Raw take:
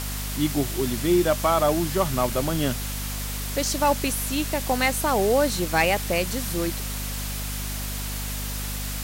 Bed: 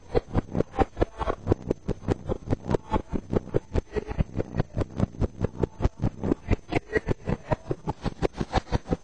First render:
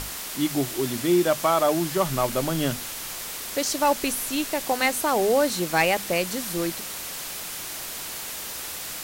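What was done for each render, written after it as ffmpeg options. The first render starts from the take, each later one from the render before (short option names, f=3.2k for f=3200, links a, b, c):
-af "bandreject=f=50:t=h:w=6,bandreject=f=100:t=h:w=6,bandreject=f=150:t=h:w=6,bandreject=f=200:t=h:w=6,bandreject=f=250:t=h:w=6"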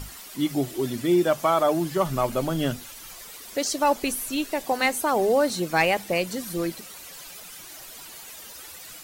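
-af "afftdn=nr=12:nf=-35"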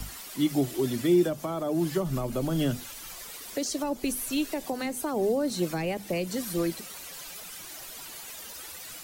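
-filter_complex "[0:a]acrossover=split=450[a][b];[b]acompressor=threshold=-29dB:ratio=6[c];[a][c]amix=inputs=2:normalize=0,acrossover=split=220|440|3900[d][e][f][g];[f]alimiter=level_in=3.5dB:limit=-24dB:level=0:latency=1:release=142,volume=-3.5dB[h];[d][e][h][g]amix=inputs=4:normalize=0"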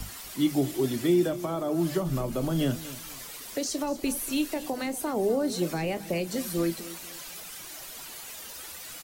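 -filter_complex "[0:a]asplit=2[a][b];[b]adelay=30,volume=-13dB[c];[a][c]amix=inputs=2:normalize=0,aecho=1:1:240|480|720:0.158|0.0475|0.0143"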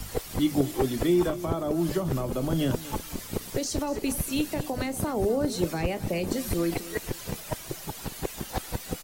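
-filter_complex "[1:a]volume=-7dB[a];[0:a][a]amix=inputs=2:normalize=0"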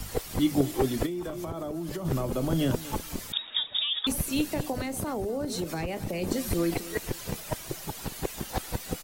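-filter_complex "[0:a]asplit=3[a][b][c];[a]afade=t=out:st=1.05:d=0.02[d];[b]acompressor=threshold=-30dB:ratio=8:attack=3.2:release=140:knee=1:detection=peak,afade=t=in:st=1.05:d=0.02,afade=t=out:st=2.04:d=0.02[e];[c]afade=t=in:st=2.04:d=0.02[f];[d][e][f]amix=inputs=3:normalize=0,asettb=1/sr,asplit=3[g][h][i];[g]atrim=end=3.324[j];[h]atrim=start=3.32:end=4.07,asetpts=PTS-STARTPTS,afade=t=in:d=0.004:c=qsin,afade=t=out:st=0.746:d=0.004:c=qsin,lowpass=f=3.2k:t=q:w=0.5098,lowpass=f=3.2k:t=q:w=0.6013,lowpass=f=3.2k:t=q:w=0.9,lowpass=f=3.2k:t=q:w=2.563,afreqshift=-3800[k];[i]atrim=start=4.066[l];[j][k]acrossfade=d=0.004:c1=hsin:c2=qsin[m];[m][l]acrossfade=d=0.004:c1=qsin:c2=hsin,asettb=1/sr,asplit=3[n][o][p];[n]atrim=end=4.724[q];[o]atrim=start=4.72:end=6.22,asetpts=PTS-STARTPTS,afade=t=in:d=0.004:c=qsin,afade=t=out:st=1.496:d=0.004:c=qsin,acompressor=threshold=-27dB:ratio=6:attack=3.2:release=140:knee=1:detection=peak[r];[p]atrim=start=6.216[s];[q][r]acrossfade=d=0.004:c1=hsin:c2=qsin[t];[t][s]acrossfade=d=0.004:c1=qsin:c2=hsin"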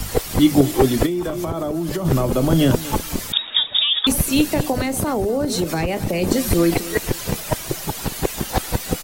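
-af "volume=10.5dB,alimiter=limit=-2dB:level=0:latency=1"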